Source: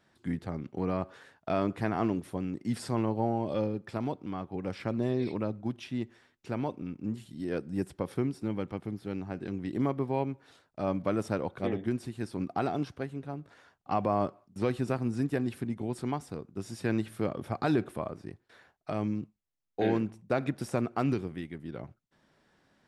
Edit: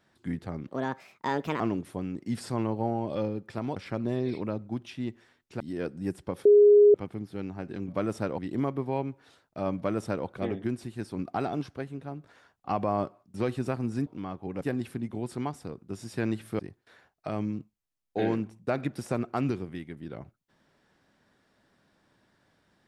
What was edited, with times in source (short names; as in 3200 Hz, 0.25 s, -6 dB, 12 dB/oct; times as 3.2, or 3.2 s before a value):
0.68–1.99 speed 142%
4.15–4.7 move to 15.28
6.54–7.32 cut
8.17–8.66 bleep 413 Hz -13 dBFS
10.98–11.48 copy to 9.6
17.26–18.22 cut